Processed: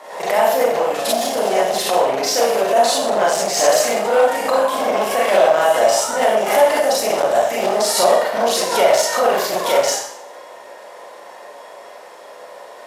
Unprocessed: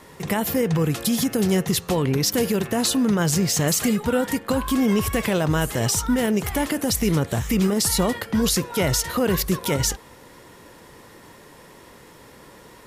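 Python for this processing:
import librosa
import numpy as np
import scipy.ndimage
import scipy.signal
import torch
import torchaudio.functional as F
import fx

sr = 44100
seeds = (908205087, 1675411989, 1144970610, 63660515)

y = fx.octave_divider(x, sr, octaves=2, level_db=1.0)
y = fx.high_shelf(y, sr, hz=4700.0, db=-11.5)
y = fx.rev_schroeder(y, sr, rt60_s=0.61, comb_ms=30, drr_db=-6.0)
y = np.clip(y, -10.0 ** (-10.0 / 20.0), 10.0 ** (-10.0 / 20.0))
y = fx.highpass_res(y, sr, hz=640.0, q=4.9)
y = fx.peak_eq(y, sr, hz=7100.0, db=5.0, octaves=1.9)
y = fx.pre_swell(y, sr, db_per_s=75.0)
y = F.gain(torch.from_numpy(y), -1.0).numpy()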